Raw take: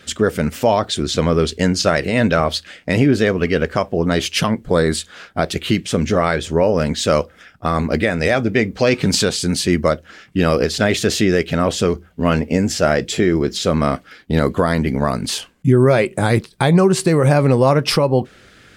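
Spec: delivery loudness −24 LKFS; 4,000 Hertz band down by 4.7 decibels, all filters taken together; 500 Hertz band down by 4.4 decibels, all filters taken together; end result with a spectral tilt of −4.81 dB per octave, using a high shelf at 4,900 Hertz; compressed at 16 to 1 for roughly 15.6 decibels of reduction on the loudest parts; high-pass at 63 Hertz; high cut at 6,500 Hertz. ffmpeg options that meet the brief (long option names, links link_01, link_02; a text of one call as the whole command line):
ffmpeg -i in.wav -af "highpass=63,lowpass=6500,equalizer=frequency=500:width_type=o:gain=-5.5,equalizer=frequency=4000:width_type=o:gain=-7.5,highshelf=frequency=4900:gain=4.5,acompressor=threshold=-26dB:ratio=16,volume=8dB" out.wav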